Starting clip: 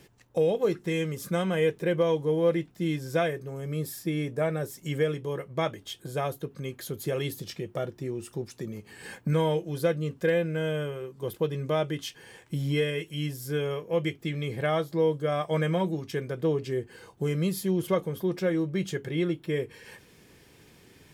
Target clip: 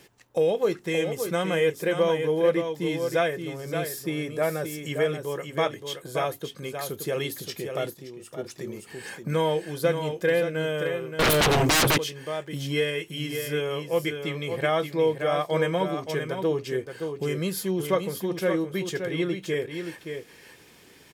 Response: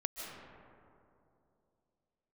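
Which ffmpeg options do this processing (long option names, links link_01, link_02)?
-filter_complex "[0:a]lowshelf=frequency=240:gain=-10.5,aecho=1:1:574:0.447,asplit=3[link_01][link_02][link_03];[link_01]afade=type=out:start_time=7.93:duration=0.02[link_04];[link_02]acompressor=threshold=-43dB:ratio=5,afade=type=in:start_time=7.93:duration=0.02,afade=type=out:start_time=8.37:duration=0.02[link_05];[link_03]afade=type=in:start_time=8.37:duration=0.02[link_06];[link_04][link_05][link_06]amix=inputs=3:normalize=0,asettb=1/sr,asplit=3[link_07][link_08][link_09];[link_07]atrim=end=11.194[link_10];[link_08]atrim=start=11.19:end=11.98,asetpts=PTS-STARTPTS,afade=type=in:duration=0.004:curve=qsin,afade=type=out:start_time=0.786:duration=0.004:curve=qsin,aeval=exprs='0.0891*sin(PI/2*6.31*val(0)/0.0891)':channel_layout=same[link_11];[link_09]atrim=start=11.976[link_12];[link_10][link_11]acrossfade=duration=0.004:curve1=hsin:curve2=qsin[link_13];[link_13][link_12]acrossfade=duration=0.004:curve1=qsin:curve2=hsin,volume=4dB"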